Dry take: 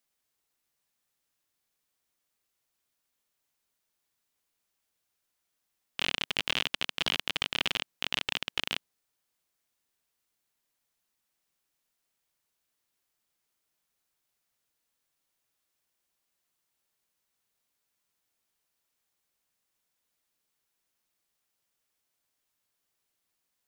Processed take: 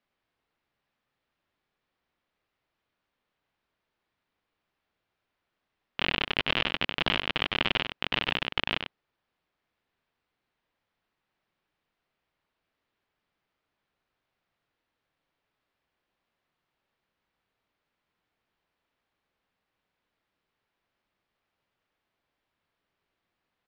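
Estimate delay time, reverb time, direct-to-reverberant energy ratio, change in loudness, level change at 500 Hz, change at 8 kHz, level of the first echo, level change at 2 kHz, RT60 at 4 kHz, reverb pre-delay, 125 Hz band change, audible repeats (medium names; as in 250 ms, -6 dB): 97 ms, no reverb, no reverb, +2.5 dB, +7.5 dB, under -10 dB, -7.0 dB, +4.0 dB, no reverb, no reverb, +8.0 dB, 1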